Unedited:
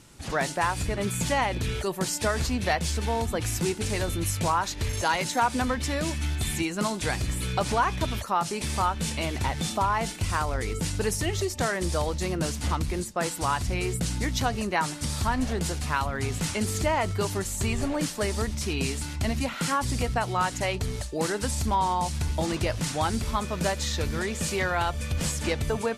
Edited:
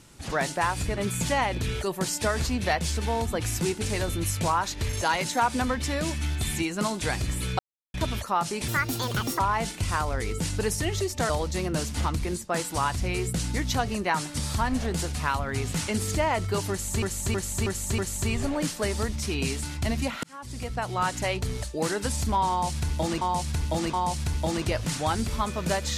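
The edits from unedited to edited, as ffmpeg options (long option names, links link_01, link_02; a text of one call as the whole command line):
ffmpeg -i in.wav -filter_complex "[0:a]asplit=13[link_01][link_02][link_03][link_04][link_05][link_06][link_07][link_08][link_09][link_10][link_11][link_12][link_13];[link_01]atrim=end=7.59,asetpts=PTS-STARTPTS,afade=type=out:start_time=7.586:duration=0.004:curve=hsin[link_14];[link_02]atrim=start=7.59:end=7.94,asetpts=PTS-STARTPTS,volume=0[link_15];[link_03]atrim=start=7.94:end=8.684,asetpts=PTS-STARTPTS,afade=type=in:duration=0.004:curve=hsin[link_16];[link_04]atrim=start=8.68:end=9.8,asetpts=PTS-STARTPTS,asetrate=69237,aresample=44100[link_17];[link_05]atrim=start=9.796:end=11.702[link_18];[link_06]atrim=start=11.958:end=17.692[link_19];[link_07]atrim=start=17.368:end=17.692[link_20];[link_08]atrim=start=17.368:end=17.692[link_21];[link_09]atrim=start=17.368:end=17.692[link_22];[link_10]atrim=start=17.368:end=19.62,asetpts=PTS-STARTPTS,afade=type=out:start_time=2.248:duration=0.004:curve=hsin[link_23];[link_11]atrim=start=19.62:end=22.602,asetpts=PTS-STARTPTS,afade=type=in:duration=0.86[link_24];[link_12]atrim=start=21.878:end=22.602[link_25];[link_13]atrim=start=21.878[link_26];[link_14][link_15][link_16]concat=n=3:v=0:a=1[link_27];[link_27][link_17]acrossfade=duration=0.004:curve1=hsin:curve2=hsin[link_28];[link_28][link_18]acrossfade=duration=0.004:curve1=hsin:curve2=hsin[link_29];[link_29][link_19]acrossfade=duration=0.004:curve1=hsin:curve2=hsin[link_30];[link_30][link_20]acrossfade=duration=0.004:curve1=hsin:curve2=hsin[link_31];[link_31][link_21]acrossfade=duration=0.004:curve1=hsin:curve2=hsin[link_32];[link_32][link_22]acrossfade=duration=0.004:curve1=hsin:curve2=hsin[link_33];[link_23][link_24]concat=n=2:v=0:a=1[link_34];[link_33][link_34]acrossfade=duration=0.004:curve1=hsin:curve2=hsin[link_35];[link_35][link_25]acrossfade=duration=0.004:curve1=hsin:curve2=hsin[link_36];[link_36][link_26]acrossfade=duration=0.004:curve1=hsin:curve2=hsin" out.wav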